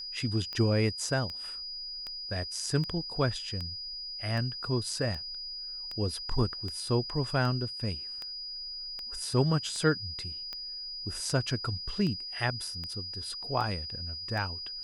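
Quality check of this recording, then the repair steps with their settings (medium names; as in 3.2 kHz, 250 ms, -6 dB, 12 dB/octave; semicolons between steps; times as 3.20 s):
tick 78 rpm -24 dBFS
whine 4.9 kHz -37 dBFS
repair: de-click; band-stop 4.9 kHz, Q 30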